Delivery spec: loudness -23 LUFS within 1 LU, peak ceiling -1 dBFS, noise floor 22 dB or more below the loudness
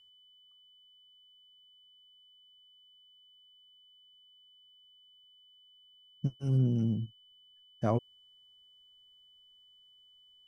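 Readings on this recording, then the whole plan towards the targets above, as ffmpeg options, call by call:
steady tone 3000 Hz; tone level -59 dBFS; loudness -32.0 LUFS; peak -16.0 dBFS; loudness target -23.0 LUFS
-> -af "bandreject=f=3k:w=30"
-af "volume=9dB"

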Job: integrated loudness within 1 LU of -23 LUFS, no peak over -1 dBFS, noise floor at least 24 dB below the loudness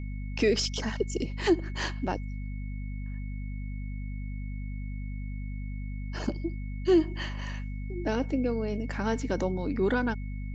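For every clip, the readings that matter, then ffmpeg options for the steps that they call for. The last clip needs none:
hum 50 Hz; harmonics up to 250 Hz; hum level -33 dBFS; steady tone 2200 Hz; tone level -52 dBFS; loudness -31.5 LUFS; peak -13.0 dBFS; loudness target -23.0 LUFS
-> -af "bandreject=f=50:t=h:w=4,bandreject=f=100:t=h:w=4,bandreject=f=150:t=h:w=4,bandreject=f=200:t=h:w=4,bandreject=f=250:t=h:w=4"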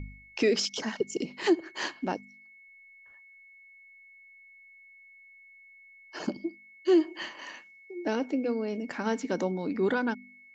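hum none; steady tone 2200 Hz; tone level -52 dBFS
-> -af "bandreject=f=2.2k:w=30"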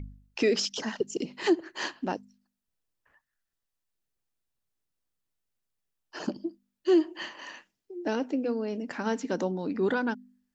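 steady tone none; loudness -30.5 LUFS; peak -13.5 dBFS; loudness target -23.0 LUFS
-> -af "volume=7.5dB"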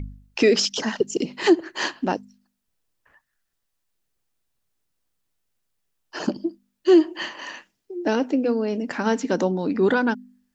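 loudness -23.0 LUFS; peak -6.0 dBFS; noise floor -77 dBFS

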